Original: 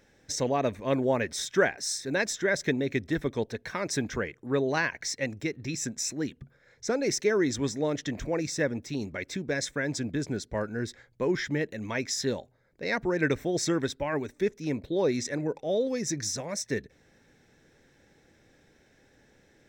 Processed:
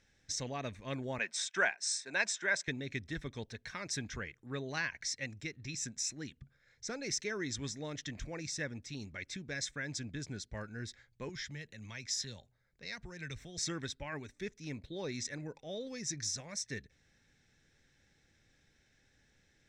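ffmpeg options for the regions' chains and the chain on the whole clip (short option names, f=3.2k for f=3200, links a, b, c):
-filter_complex "[0:a]asettb=1/sr,asplit=3[a][b][c];[a]atrim=end=1.184[d];[b]atrim=start=1.18:end=2.68,asetpts=PTS-STARTPTS,afade=t=in:d=0.004:c=qsin,afade=t=out:st=1.496:d=0.004:c=qsin,agate=range=-33dB:threshold=-38dB:ratio=3:release=100:detection=peak,highpass=f=200:w=0.5412,highpass=f=200:w=1.3066,equalizer=f=270:t=q:w=4:g=-6,equalizer=f=680:t=q:w=4:g=7,equalizer=f=970:t=q:w=4:g=10,equalizer=f=1.5k:t=q:w=4:g=6,equalizer=f=2.5k:t=q:w=4:g=7,equalizer=f=8.2k:t=q:w=4:g=6,lowpass=f=9.4k:w=0.5412,lowpass=f=9.4k:w=1.3066[e];[c]atrim=start=2.676[f];[d][e]acrossfade=d=0.004:c1=hsin:c2=qsin[g];[g][f]acrossfade=d=0.004:c1=qsin:c2=hsin,asettb=1/sr,asplit=3[h][i][j];[h]atrim=end=11.294[k];[i]atrim=start=11.29:end=13.58,asetpts=PTS-STARTPTS,afade=t=in:d=0.004:c=qsin,afade=t=out:st=2.286:d=0.004:c=qsin,equalizer=f=300:w=5.7:g=-5.5,acrossover=split=140|3000[l][m][n];[m]acompressor=threshold=-41dB:ratio=2:attack=3.2:release=140:knee=2.83:detection=peak[o];[l][o][n]amix=inputs=3:normalize=0[p];[j]atrim=start=13.576[q];[k][p]acrossfade=d=0.004:c1=hsin:c2=qsin[r];[r][q]acrossfade=d=0.004:c1=qsin:c2=hsin,lowpass=7.9k,equalizer=f=460:t=o:w=2.9:g=-13,bandreject=f=970:w=25,volume=-3dB"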